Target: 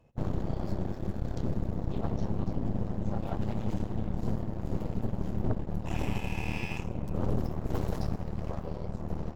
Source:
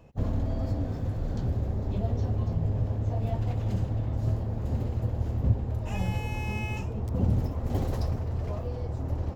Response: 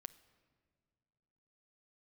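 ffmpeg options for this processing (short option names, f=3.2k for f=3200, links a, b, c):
-filter_complex "[1:a]atrim=start_sample=2205,asetrate=35280,aresample=44100[a];[0:a][a]afir=irnorm=-1:irlink=0,aeval=exprs='0.158*(cos(1*acos(clip(val(0)/0.158,-1,1)))-cos(1*PI/2))+0.0631*(cos(8*acos(clip(val(0)/0.158,-1,1)))-cos(8*PI/2))':c=same,volume=-4.5dB"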